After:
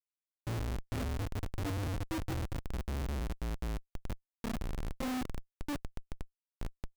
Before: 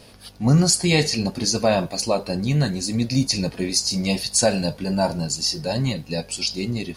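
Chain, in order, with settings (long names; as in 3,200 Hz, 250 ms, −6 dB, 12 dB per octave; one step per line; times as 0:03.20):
vocoder with a gliding carrier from E3, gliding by +12 semitones
flanger 1.4 Hz, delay 8.1 ms, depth 3.7 ms, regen −6%
low-pass that shuts in the quiet parts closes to 300 Hz, open at −21.5 dBFS
repeating echo 68 ms, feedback 49%, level −9.5 dB
square-wave tremolo 4.4 Hz, depth 65%, duty 60%
mains-hum notches 50/100/150/200/250/300 Hz
single-sideband voice off tune −290 Hz 240–3,300 Hz
rectangular room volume 330 cubic metres, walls mixed, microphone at 0.54 metres
sound drawn into the spectrogram rise, 0:01.34–0:01.85, 200–1,600 Hz −43 dBFS
comparator with hysteresis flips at −30 dBFS
level −4.5 dB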